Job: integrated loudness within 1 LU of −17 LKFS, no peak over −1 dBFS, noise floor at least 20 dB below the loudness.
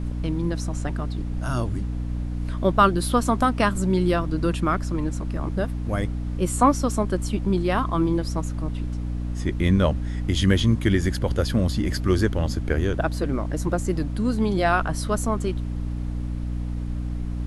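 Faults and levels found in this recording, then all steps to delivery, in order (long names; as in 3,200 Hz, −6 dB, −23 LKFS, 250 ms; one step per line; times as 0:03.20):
mains hum 60 Hz; hum harmonics up to 300 Hz; level of the hum −25 dBFS; background noise floor −29 dBFS; target noise floor −45 dBFS; integrated loudness −24.5 LKFS; sample peak −4.0 dBFS; target loudness −17.0 LKFS
→ mains-hum notches 60/120/180/240/300 Hz
noise reduction from a noise print 16 dB
level +7.5 dB
brickwall limiter −1 dBFS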